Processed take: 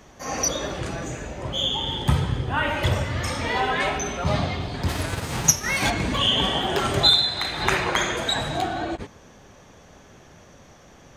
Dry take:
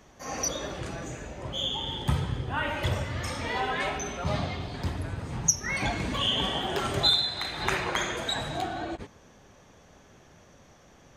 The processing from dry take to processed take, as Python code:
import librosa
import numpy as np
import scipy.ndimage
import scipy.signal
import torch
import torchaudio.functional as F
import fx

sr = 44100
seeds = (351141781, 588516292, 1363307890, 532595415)

y = fx.envelope_flatten(x, sr, power=0.6, at=(4.88, 5.89), fade=0.02)
y = y * 10.0 ** (6.0 / 20.0)